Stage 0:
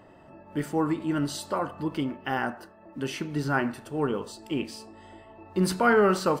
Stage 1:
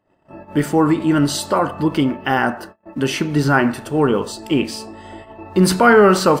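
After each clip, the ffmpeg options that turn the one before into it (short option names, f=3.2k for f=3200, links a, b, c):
-filter_complex "[0:a]agate=range=-30dB:threshold=-49dB:ratio=16:detection=peak,asplit=2[a][b];[b]alimiter=limit=-21dB:level=0:latency=1,volume=-2dB[c];[a][c]amix=inputs=2:normalize=0,volume=7.5dB"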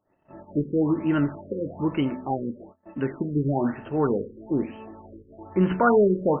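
-af "bandreject=f=85.07:t=h:w=4,bandreject=f=170.14:t=h:w=4,bandreject=f=255.21:t=h:w=4,afftfilt=real='re*lt(b*sr/1024,520*pow(3200/520,0.5+0.5*sin(2*PI*1.1*pts/sr)))':imag='im*lt(b*sr/1024,520*pow(3200/520,0.5+0.5*sin(2*PI*1.1*pts/sr)))':win_size=1024:overlap=0.75,volume=-7dB"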